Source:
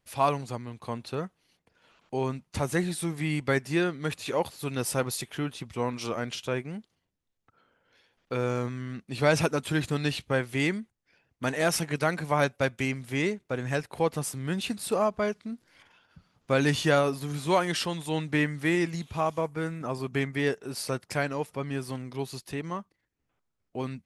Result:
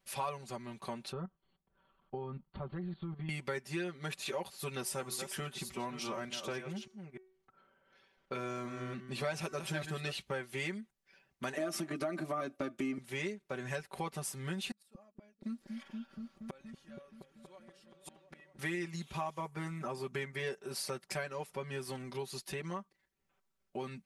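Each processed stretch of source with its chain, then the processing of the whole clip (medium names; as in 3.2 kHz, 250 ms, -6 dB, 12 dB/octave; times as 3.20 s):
1.12–3.29 s: tilt EQ -4.5 dB/octave + level held to a coarse grid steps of 13 dB + rippled Chebyshev low-pass 4.5 kHz, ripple 9 dB
4.81–10.12 s: chunks repeated in reverse 295 ms, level -10 dB + de-hum 375.1 Hz, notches 35 + tape noise reduction on one side only decoder only
11.57–12.98 s: peaking EQ 320 Hz +12.5 dB 0.6 oct + compression, threshold -23 dBFS + small resonant body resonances 280/640/1200 Hz, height 18 dB, ringing for 95 ms
14.71–18.59 s: comb 3.6 ms, depth 49% + inverted gate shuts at -27 dBFS, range -36 dB + delay with an opening low-pass 237 ms, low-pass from 200 Hz, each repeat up 1 oct, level -3 dB
whole clip: bass shelf 370 Hz -5 dB; comb 5.2 ms, depth 93%; compression 3:1, threshold -36 dBFS; trim -2 dB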